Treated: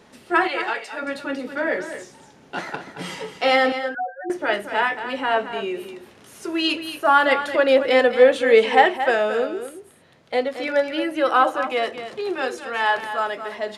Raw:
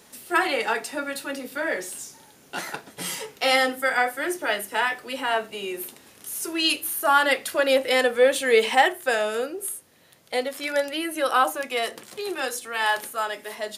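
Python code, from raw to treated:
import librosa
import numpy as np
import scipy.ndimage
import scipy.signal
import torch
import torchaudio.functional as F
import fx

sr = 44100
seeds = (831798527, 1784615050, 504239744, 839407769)

y = fx.highpass(x, sr, hz=1300.0, slope=6, at=(0.47, 1.01), fade=0.02)
y = fx.spec_topn(y, sr, count=1, at=(3.72, 4.3))
y = fx.spacing_loss(y, sr, db_at_10k=21)
y = y + 10.0 ** (-10.5 / 20.0) * np.pad(y, (int(225 * sr / 1000.0), 0))[:len(y)]
y = y * 10.0 ** (5.5 / 20.0)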